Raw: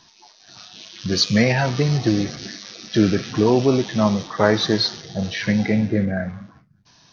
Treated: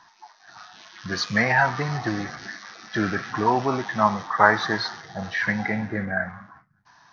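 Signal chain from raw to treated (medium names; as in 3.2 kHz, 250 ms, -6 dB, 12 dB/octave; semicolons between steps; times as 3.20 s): high-order bell 1.2 kHz +15.5 dB; trim -9 dB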